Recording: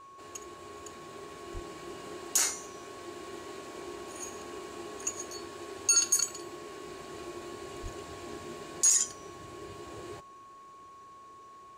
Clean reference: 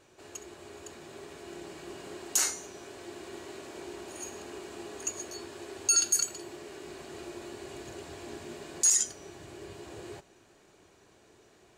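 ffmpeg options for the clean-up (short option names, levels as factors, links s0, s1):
-filter_complex "[0:a]bandreject=f=1100:w=30,asplit=3[s0][s1][s2];[s0]afade=t=out:st=1.53:d=0.02[s3];[s1]highpass=f=140:w=0.5412,highpass=f=140:w=1.3066,afade=t=in:st=1.53:d=0.02,afade=t=out:st=1.65:d=0.02[s4];[s2]afade=t=in:st=1.65:d=0.02[s5];[s3][s4][s5]amix=inputs=3:normalize=0,asplit=3[s6][s7][s8];[s6]afade=t=out:st=7.82:d=0.02[s9];[s7]highpass=f=140:w=0.5412,highpass=f=140:w=1.3066,afade=t=in:st=7.82:d=0.02,afade=t=out:st=7.94:d=0.02[s10];[s8]afade=t=in:st=7.94:d=0.02[s11];[s9][s10][s11]amix=inputs=3:normalize=0"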